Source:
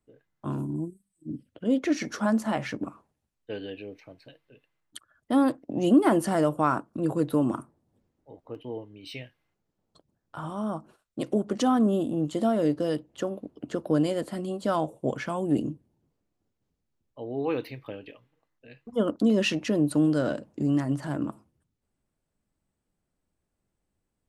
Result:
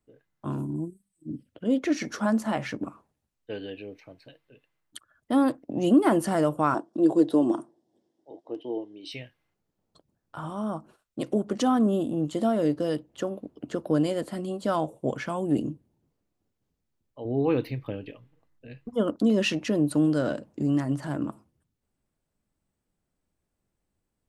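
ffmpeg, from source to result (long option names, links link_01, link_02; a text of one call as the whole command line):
ffmpeg -i in.wav -filter_complex "[0:a]asettb=1/sr,asplit=3[link_01][link_02][link_03];[link_01]atrim=end=6.744[link_04];[link_02]atrim=start=6.74:end=9.12,asetpts=PTS-STARTPTS,afade=type=in:duration=0.004:curve=qsin,afade=type=out:start_time=2.376:duration=0.004:curve=qsin,highpass=240,equalizer=frequency=340:width_type=q:width=4:gain=10,equalizer=frequency=690:width_type=q:width=4:gain=6,equalizer=frequency=1300:width_type=q:width=4:gain=-9,equalizer=frequency=2400:width_type=q:width=4:gain=-8,equalizer=frequency=3400:width_type=q:width=4:gain=6,equalizer=frequency=5300:width_type=q:width=4:gain=6,lowpass=frequency=9400:width=0.5412,lowpass=frequency=9400:width=1.3066[link_05];[link_03]atrim=start=9.116[link_06];[link_04][link_05]acrossfade=duration=0.004:curve1=hsin:curve2=qsin[link_07];[link_07][link_06]acrossfade=duration=0.004:curve1=qsin:curve2=hsin,asettb=1/sr,asplit=3[link_08][link_09][link_10];[link_08]atrim=end=17.254[link_11];[link_09]atrim=start=17.25:end=18.89,asetpts=PTS-STARTPTS,afade=type=in:duration=0.004:curve=qsin,afade=type=out:start_time=1.636:duration=0.004:curve=qsin,lowshelf=frequency=280:gain=12[link_12];[link_10]atrim=start=18.886[link_13];[link_11][link_12]acrossfade=duration=0.004:curve1=hsin:curve2=qsin[link_14];[link_14][link_13]acrossfade=duration=0.004:curve1=qsin:curve2=hsin" out.wav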